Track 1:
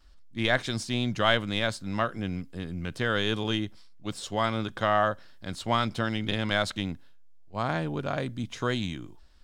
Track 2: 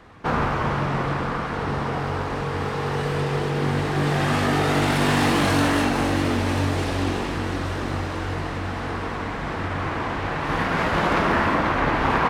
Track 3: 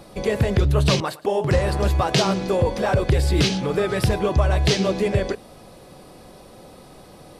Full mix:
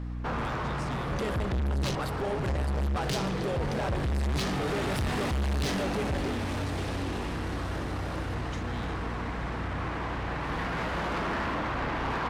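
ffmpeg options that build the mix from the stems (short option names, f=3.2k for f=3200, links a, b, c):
-filter_complex "[0:a]acompressor=threshold=-36dB:ratio=4,aeval=exprs='0.0355*(abs(mod(val(0)/0.0355+3,4)-2)-1)':c=same,volume=-1.5dB[a];[1:a]volume=-4.5dB[b];[2:a]equalizer=f=64:w=0.91:g=11,tremolo=f=130:d=0.75,adelay=950,volume=0.5dB[c];[a][b][c]amix=inputs=3:normalize=0,aeval=exprs='val(0)+0.0224*(sin(2*PI*60*n/s)+sin(2*PI*2*60*n/s)/2+sin(2*PI*3*60*n/s)/3+sin(2*PI*4*60*n/s)/4+sin(2*PI*5*60*n/s)/5)':c=same,asoftclip=type=tanh:threshold=-23dB,alimiter=level_in=2dB:limit=-24dB:level=0:latency=1:release=153,volume=-2dB"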